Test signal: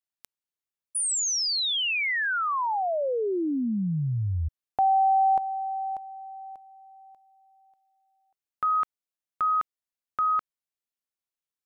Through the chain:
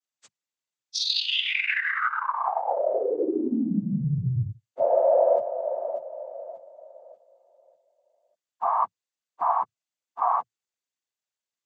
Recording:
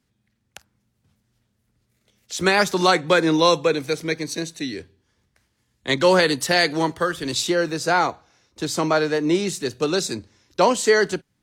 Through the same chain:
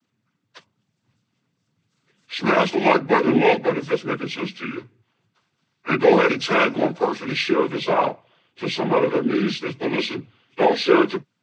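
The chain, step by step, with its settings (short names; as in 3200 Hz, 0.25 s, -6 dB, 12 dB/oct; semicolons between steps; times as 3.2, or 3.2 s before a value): inharmonic rescaling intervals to 80%; noise vocoder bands 16; gain +2 dB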